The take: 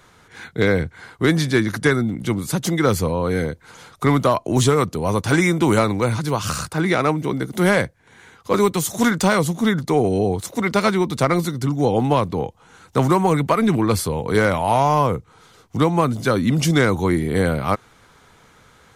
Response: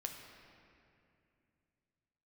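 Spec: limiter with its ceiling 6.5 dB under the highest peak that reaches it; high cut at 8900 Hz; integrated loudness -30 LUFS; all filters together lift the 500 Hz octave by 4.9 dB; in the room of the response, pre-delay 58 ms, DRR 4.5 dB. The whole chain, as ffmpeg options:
-filter_complex "[0:a]lowpass=8.9k,equalizer=f=500:t=o:g=6,alimiter=limit=-7.5dB:level=0:latency=1,asplit=2[a][b];[1:a]atrim=start_sample=2205,adelay=58[c];[b][c]afir=irnorm=-1:irlink=0,volume=-3dB[d];[a][d]amix=inputs=2:normalize=0,volume=-12.5dB"

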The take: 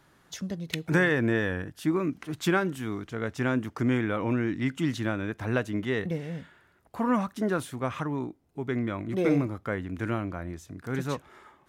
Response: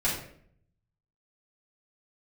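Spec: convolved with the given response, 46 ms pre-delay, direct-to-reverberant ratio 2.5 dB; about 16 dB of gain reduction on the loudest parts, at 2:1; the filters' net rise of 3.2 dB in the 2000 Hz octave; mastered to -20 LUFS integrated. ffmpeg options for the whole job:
-filter_complex "[0:a]equalizer=f=2k:t=o:g=4,acompressor=threshold=-49dB:ratio=2,asplit=2[a][b];[1:a]atrim=start_sample=2205,adelay=46[c];[b][c]afir=irnorm=-1:irlink=0,volume=-12dB[d];[a][d]amix=inputs=2:normalize=0,volume=20dB"

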